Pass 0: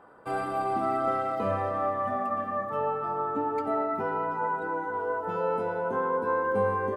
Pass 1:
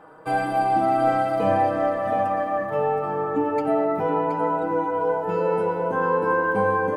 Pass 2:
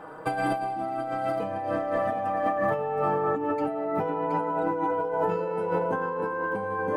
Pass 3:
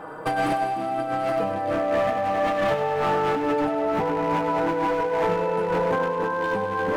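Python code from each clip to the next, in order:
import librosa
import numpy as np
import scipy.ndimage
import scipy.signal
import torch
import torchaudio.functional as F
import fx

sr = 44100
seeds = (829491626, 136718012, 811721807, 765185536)

y1 = x + 0.68 * np.pad(x, (int(6.4 * sr / 1000.0), 0))[:len(x)]
y1 = y1 + 10.0 ** (-7.5 / 20.0) * np.pad(y1, (int(722 * sr / 1000.0), 0))[:len(y1)]
y1 = F.gain(torch.from_numpy(y1), 5.0).numpy()
y2 = fx.over_compress(y1, sr, threshold_db=-28.0, ratio=-1.0)
y3 = np.clip(y2, -10.0 ** (-24.5 / 20.0), 10.0 ** (-24.5 / 20.0))
y3 = fx.echo_thinned(y3, sr, ms=99, feedback_pct=76, hz=420.0, wet_db=-9.5)
y3 = F.gain(torch.from_numpy(y3), 5.0).numpy()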